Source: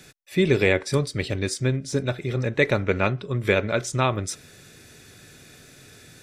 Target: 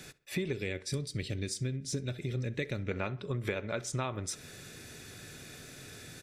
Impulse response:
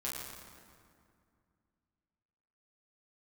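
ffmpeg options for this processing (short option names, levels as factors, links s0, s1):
-filter_complex "[0:a]asettb=1/sr,asplit=3[s0][s1][s2];[s0]atrim=end=0.534[s3];[s1]atrim=start=0.53:end=2.91,asetpts=PTS-STARTPTS,afade=t=in:d=0.004:c=qsin,afade=t=out:st=2.376:d=0.004:c=qsin,equalizer=f=920:t=o:w=1.6:g=-14.5[s4];[s2]atrim=start=2.906[s5];[s3][s4]acrossfade=d=0.004:c1=hsin:c2=qsin[s6];[s6][s5]acrossfade=d=0.004:c1=qsin:c2=hsin,acompressor=threshold=0.0251:ratio=6,asplit=2[s7][s8];[s8]adelay=66,lowpass=f=3600:p=1,volume=0.1,asplit=2[s9][s10];[s10]adelay=66,lowpass=f=3600:p=1,volume=0.46,asplit=2[s11][s12];[s12]adelay=66,lowpass=f=3600:p=1,volume=0.46[s13];[s7][s9][s11][s13]amix=inputs=4:normalize=0"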